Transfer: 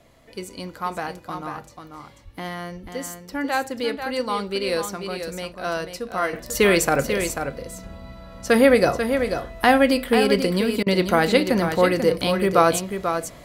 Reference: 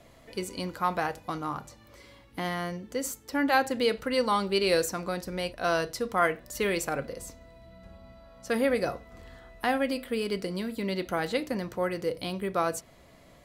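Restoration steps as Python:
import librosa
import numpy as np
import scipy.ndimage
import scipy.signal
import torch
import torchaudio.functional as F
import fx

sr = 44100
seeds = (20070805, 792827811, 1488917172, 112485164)

y = fx.highpass(x, sr, hz=140.0, slope=24, at=(2.24, 2.36), fade=0.02)
y = fx.highpass(y, sr, hz=140.0, slope=24, at=(2.82, 2.94), fade=0.02)
y = fx.fix_interpolate(y, sr, at_s=(10.83,), length_ms=34.0)
y = fx.fix_echo_inverse(y, sr, delay_ms=490, level_db=-7.5)
y = fx.fix_level(y, sr, at_s=6.33, step_db=-11.0)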